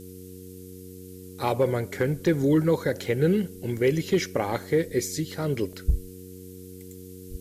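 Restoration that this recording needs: de-hum 92.5 Hz, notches 5; interpolate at 5.73, 1.8 ms; noise print and reduce 26 dB

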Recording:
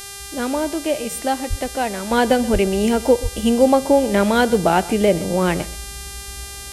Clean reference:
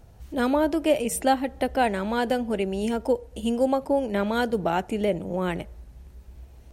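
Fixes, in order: de-hum 398.3 Hz, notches 30; de-plosive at 1.49/2.52/3.22; inverse comb 0.128 s -18.5 dB; gain correction -8.5 dB, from 2.11

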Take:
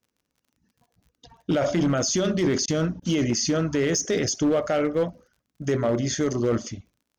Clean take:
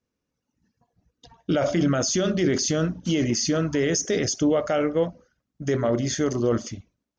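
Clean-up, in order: clip repair -16.5 dBFS; de-click; interpolate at 2.66/3, 18 ms

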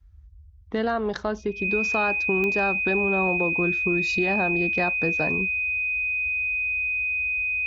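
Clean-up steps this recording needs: de-click; notch 2500 Hz, Q 30; noise print and reduce 27 dB

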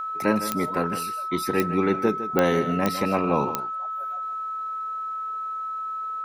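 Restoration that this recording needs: de-click; notch 1300 Hz, Q 30; inverse comb 0.156 s -12 dB

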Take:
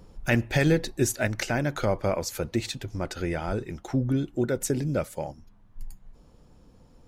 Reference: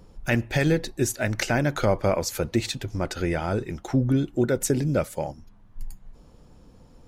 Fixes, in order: 3.46–3.58 HPF 140 Hz 24 dB/oct; gain 0 dB, from 1.27 s +3.5 dB

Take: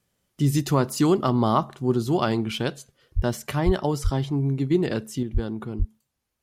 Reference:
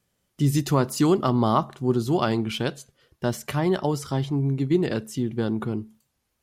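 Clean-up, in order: de-plosive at 3.15/3.65/4.03/5.33/5.78; gain correction +5 dB, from 5.23

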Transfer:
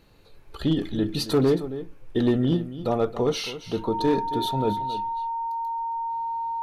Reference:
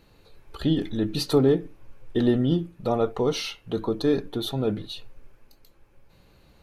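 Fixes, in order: clip repair -14.5 dBFS; notch 920 Hz, Q 30; inverse comb 0.272 s -13.5 dB; gain 0 dB, from 4.73 s +5.5 dB

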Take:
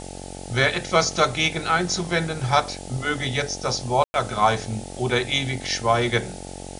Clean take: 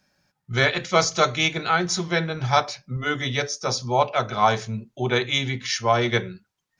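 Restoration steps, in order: de-hum 45.9 Hz, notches 19; room tone fill 4.04–4.14; noise print and reduce 30 dB

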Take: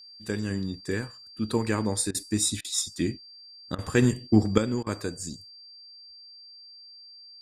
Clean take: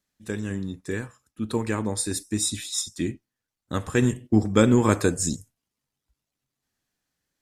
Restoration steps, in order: notch 4700 Hz, Q 30; interpolate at 2.11/2.61/3.75/4.83, 34 ms; gain 0 dB, from 4.58 s +10.5 dB

